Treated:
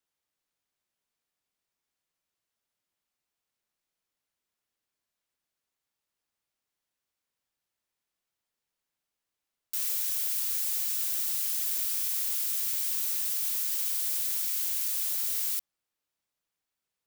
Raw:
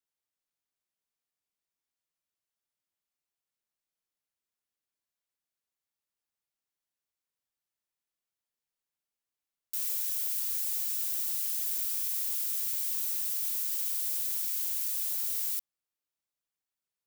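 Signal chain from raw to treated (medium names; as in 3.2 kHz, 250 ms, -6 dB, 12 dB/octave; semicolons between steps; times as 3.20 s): treble shelf 6.4 kHz -4.5 dB; trim +6 dB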